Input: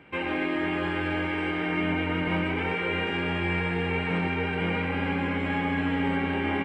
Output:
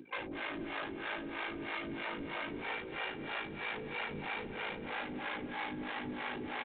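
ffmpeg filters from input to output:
-filter_complex "[0:a]afftdn=nr=25:nf=-45,highpass=220,highshelf=f=2300:g=-4.5,acrossover=split=360|2300[s0][s1][s2];[s0]acompressor=mode=upward:threshold=0.00316:ratio=2.5[s3];[s1]alimiter=level_in=1.68:limit=0.0631:level=0:latency=1:release=56,volume=0.596[s4];[s3][s4][s2]amix=inputs=3:normalize=0,asplit=2[s5][s6];[s6]highpass=f=720:p=1,volume=12.6,asoftclip=type=tanh:threshold=0.112[s7];[s5][s7]amix=inputs=2:normalize=0,lowpass=f=1700:p=1,volume=0.501,aeval=exprs='val(0)*sin(2*PI*27*n/s)':c=same,asoftclip=type=hard:threshold=0.0168,acrossover=split=470[s8][s9];[s8]aeval=exprs='val(0)*(1-1/2+1/2*cos(2*PI*3.1*n/s))':c=same[s10];[s9]aeval=exprs='val(0)*(1-1/2-1/2*cos(2*PI*3.1*n/s))':c=same[s11];[s10][s11]amix=inputs=2:normalize=0,aecho=1:1:233|466|699|932:0.178|0.0782|0.0344|0.0151,volume=1.19" -ar 8000 -c:a adpcm_g726 -b:a 40k

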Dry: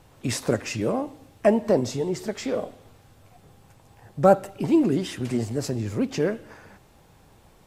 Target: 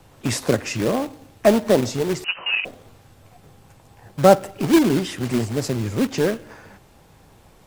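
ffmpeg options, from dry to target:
-filter_complex "[0:a]acrossover=split=120|630|1700[s0][s1][s2][s3];[s1]acrusher=bits=2:mode=log:mix=0:aa=0.000001[s4];[s0][s4][s2][s3]amix=inputs=4:normalize=0,asettb=1/sr,asplit=3[s5][s6][s7];[s5]atrim=end=2.244[s8];[s6]atrim=start=2.24:end=2.65,asetpts=PTS-STARTPTS,afade=t=in:d=0.004:c=qsin,afade=t=out:st=0.406:d=0.004:c=qsin,lowpass=f=2600:t=q:w=0.5098,lowpass=f=2600:t=q:w=0.6013,lowpass=f=2600:t=q:w=0.9,lowpass=f=2600:t=q:w=2.563,afreqshift=-3100[s9];[s7]atrim=start=2.646[s10];[s8][s9]acrossfade=d=0.004:c1=hsin:c2=qsin[s11];[s11][s10]acrossfade=d=0.004:c1=qsin:c2=hsin,volume=1.5"

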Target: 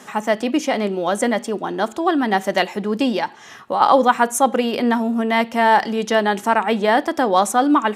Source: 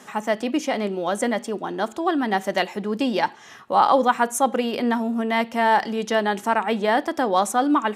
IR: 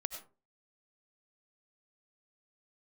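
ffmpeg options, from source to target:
-filter_complex "[0:a]asplit=3[s0][s1][s2];[s0]afade=t=out:st=3.12:d=0.02[s3];[s1]acompressor=threshold=0.0794:ratio=6,afade=t=in:st=3.12:d=0.02,afade=t=out:st=3.8:d=0.02[s4];[s2]afade=t=in:st=3.8:d=0.02[s5];[s3][s4][s5]amix=inputs=3:normalize=0,volume=1.58"

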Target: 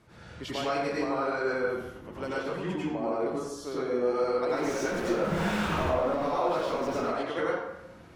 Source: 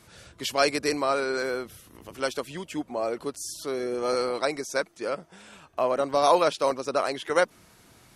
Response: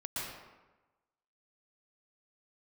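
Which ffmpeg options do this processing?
-filter_complex "[0:a]asettb=1/sr,asplit=3[s0][s1][s2];[s0]atrim=end=4.494[s3];[s1]atrim=start=4.49:end=7.02,asetpts=PTS-STARTPTS,afade=t=in:d=0.004:c=qsin,afade=t=out:st=2.526:d=0.004:c=qsin,aeval=exprs='val(0)+0.5*0.0501*sgn(val(0))':c=same[s4];[s2]atrim=start=7.016[s5];[s3][s4]acrossfade=d=0.004:c1=hsin:c2=qsin[s6];[s6][s5]acrossfade=d=0.004:c1=qsin:c2=hsin,lowpass=f=1500:p=1,acompressor=threshold=0.0316:ratio=6[s7];[1:a]atrim=start_sample=2205,asetrate=57330,aresample=44100[s8];[s7][s8]afir=irnorm=-1:irlink=0,volume=1.68"

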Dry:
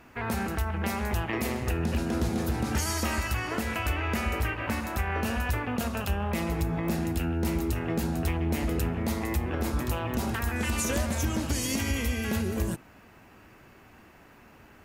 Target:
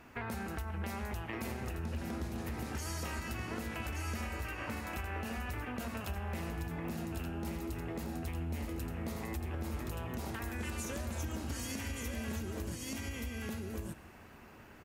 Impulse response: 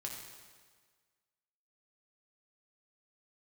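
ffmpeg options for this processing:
-filter_complex "[0:a]asplit=2[s0][s1];[s1]aecho=0:1:1176:0.531[s2];[s0][s2]amix=inputs=2:normalize=0,acompressor=threshold=0.02:ratio=6,asplit=2[s3][s4];[1:a]atrim=start_sample=2205,asetrate=28224,aresample=44100[s5];[s4][s5]afir=irnorm=-1:irlink=0,volume=0.211[s6];[s3][s6]amix=inputs=2:normalize=0,volume=0.631"

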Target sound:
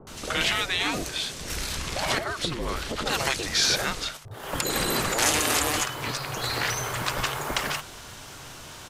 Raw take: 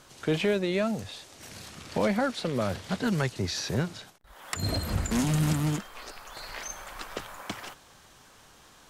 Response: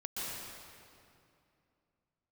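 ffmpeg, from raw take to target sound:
-filter_complex "[0:a]acrossover=split=890[s0][s1];[s1]adelay=70[s2];[s0][s2]amix=inputs=2:normalize=0,asettb=1/sr,asplit=3[s3][s4][s5];[s3]atrim=end=2.184[s6];[s4]atrim=start=2.18:end=3.06,asetpts=PTS-STARTPTS,afade=t=in:d=0.004:c=qsin,afade=t=out:st=0.876:d=0.004:c=qsin,acompressor=threshold=0.0178:ratio=6[s7];[s5]atrim=start=3.056[s8];[s6][s7]acrossfade=d=0.004:c1=hsin:c2=qsin[s9];[s9][s8]acrossfade=d=0.004:c1=qsin:c2=hsin,afftfilt=real='re*lt(hypot(re,im),0.0708)':imag='im*lt(hypot(re,im),0.0708)':win_size=1024:overlap=0.75,afreqshift=-150,alimiter=level_in=13.3:limit=0.891:release=50:level=0:latency=1,volume=0.355"

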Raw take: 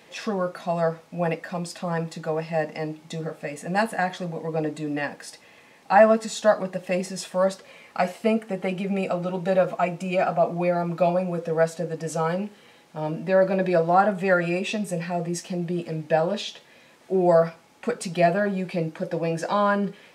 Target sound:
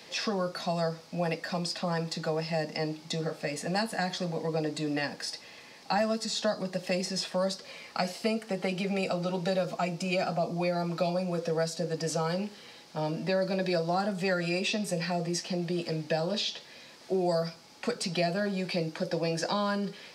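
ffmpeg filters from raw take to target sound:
-filter_complex "[0:a]equalizer=f=4800:t=o:w=0.73:g=12.5,acrossover=split=150|380|3500[s0][s1][s2][s3];[s0]acompressor=threshold=0.00794:ratio=4[s4];[s1]acompressor=threshold=0.0178:ratio=4[s5];[s2]acompressor=threshold=0.0282:ratio=4[s6];[s3]acompressor=threshold=0.0158:ratio=4[s7];[s4][s5][s6][s7]amix=inputs=4:normalize=0"

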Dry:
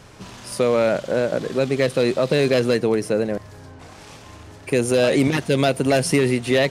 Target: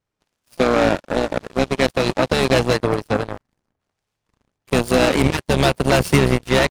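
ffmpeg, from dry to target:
-filter_complex "[0:a]asubboost=boost=2.5:cutoff=130,asplit=3[s0][s1][s2];[s1]asetrate=22050,aresample=44100,atempo=2,volume=0.501[s3];[s2]asetrate=58866,aresample=44100,atempo=0.749154,volume=0.251[s4];[s0][s3][s4]amix=inputs=3:normalize=0,aeval=exprs='0.562*(cos(1*acos(clip(val(0)/0.562,-1,1)))-cos(1*PI/2))+0.00447*(cos(3*acos(clip(val(0)/0.562,-1,1)))-cos(3*PI/2))+0.0794*(cos(7*acos(clip(val(0)/0.562,-1,1)))-cos(7*PI/2))':c=same,volume=1.33"

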